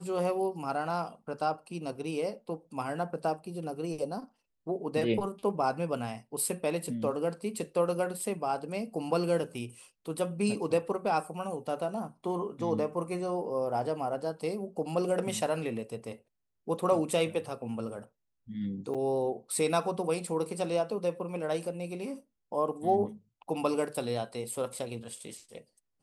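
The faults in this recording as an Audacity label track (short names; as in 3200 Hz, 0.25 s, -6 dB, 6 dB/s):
18.940000	18.950000	gap 6.7 ms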